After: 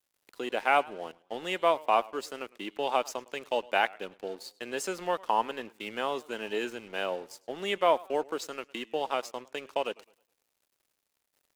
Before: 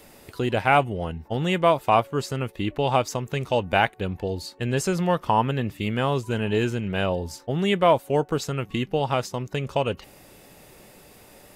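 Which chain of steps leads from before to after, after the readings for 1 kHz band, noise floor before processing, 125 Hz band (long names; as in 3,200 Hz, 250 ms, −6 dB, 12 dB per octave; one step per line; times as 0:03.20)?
−5.5 dB, −51 dBFS, −28.5 dB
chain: Bessel high-pass filter 390 Hz, order 6
dead-zone distortion −45 dBFS
feedback echo with a swinging delay time 105 ms, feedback 34%, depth 128 cents, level −23 dB
level −4.5 dB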